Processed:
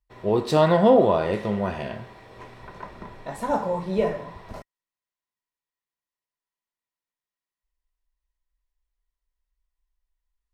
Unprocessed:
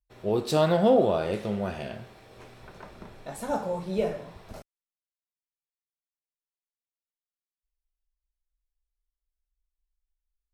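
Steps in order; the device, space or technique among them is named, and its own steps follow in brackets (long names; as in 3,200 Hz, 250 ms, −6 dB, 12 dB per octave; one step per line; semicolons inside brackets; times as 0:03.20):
inside a helmet (high-shelf EQ 5,700 Hz −9 dB; hollow resonant body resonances 1,000/1,900 Hz, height 12 dB, ringing for 45 ms)
level +4 dB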